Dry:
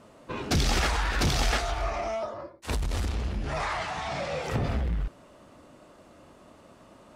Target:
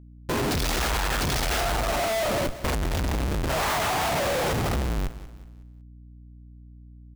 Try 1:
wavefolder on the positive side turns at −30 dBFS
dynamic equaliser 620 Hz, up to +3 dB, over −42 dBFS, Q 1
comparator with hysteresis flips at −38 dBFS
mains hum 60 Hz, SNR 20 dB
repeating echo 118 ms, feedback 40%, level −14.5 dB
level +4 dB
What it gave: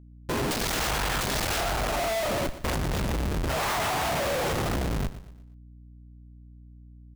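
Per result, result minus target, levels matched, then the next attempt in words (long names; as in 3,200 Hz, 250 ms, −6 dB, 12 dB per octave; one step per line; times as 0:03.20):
wavefolder on the positive side: distortion +39 dB; echo 67 ms early
wavefolder on the positive side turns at −20 dBFS
dynamic equaliser 620 Hz, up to +3 dB, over −42 dBFS, Q 1
comparator with hysteresis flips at −38 dBFS
mains hum 60 Hz, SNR 20 dB
repeating echo 118 ms, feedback 40%, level −14.5 dB
level +4 dB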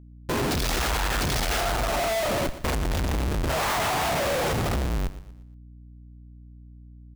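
echo 67 ms early
wavefolder on the positive side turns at −20 dBFS
dynamic equaliser 620 Hz, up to +3 dB, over −42 dBFS, Q 1
comparator with hysteresis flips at −38 dBFS
mains hum 60 Hz, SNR 20 dB
repeating echo 185 ms, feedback 40%, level −14.5 dB
level +4 dB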